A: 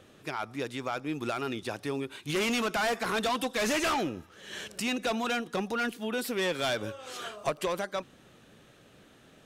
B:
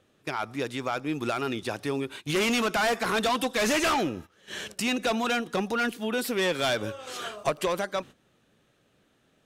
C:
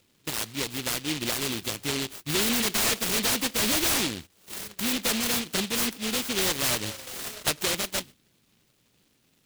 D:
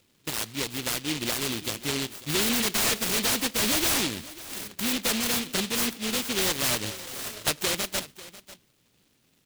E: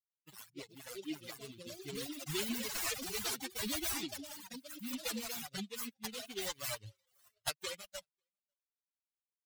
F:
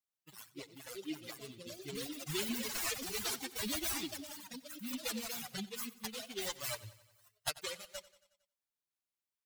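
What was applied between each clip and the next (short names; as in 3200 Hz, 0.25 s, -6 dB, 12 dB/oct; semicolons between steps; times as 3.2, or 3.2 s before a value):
gate -45 dBFS, range -13 dB; gain +3.5 dB
noise-modulated delay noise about 3100 Hz, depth 0.41 ms
echo 0.544 s -17.5 dB
per-bin expansion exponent 3; echoes that change speed 0.11 s, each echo +4 st, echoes 2, each echo -6 dB; gain -5.5 dB
feedback echo 91 ms, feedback 59%, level -18.5 dB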